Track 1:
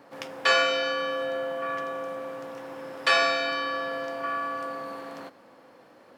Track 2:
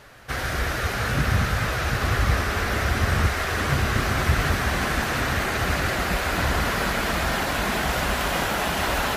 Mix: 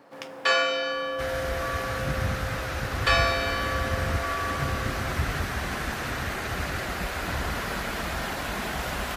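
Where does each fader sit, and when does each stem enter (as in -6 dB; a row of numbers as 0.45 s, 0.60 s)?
-1.0 dB, -6.5 dB; 0.00 s, 0.90 s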